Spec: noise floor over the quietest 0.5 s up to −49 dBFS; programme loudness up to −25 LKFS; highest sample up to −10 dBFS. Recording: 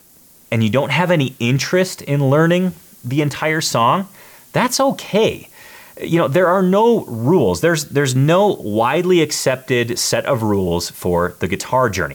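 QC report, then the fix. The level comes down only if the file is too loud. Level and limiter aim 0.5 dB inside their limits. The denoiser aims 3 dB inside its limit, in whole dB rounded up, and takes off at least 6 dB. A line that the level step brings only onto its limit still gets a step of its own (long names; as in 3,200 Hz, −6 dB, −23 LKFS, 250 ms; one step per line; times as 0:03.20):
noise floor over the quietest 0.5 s −48 dBFS: out of spec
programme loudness −16.5 LKFS: out of spec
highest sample −5.0 dBFS: out of spec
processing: level −9 dB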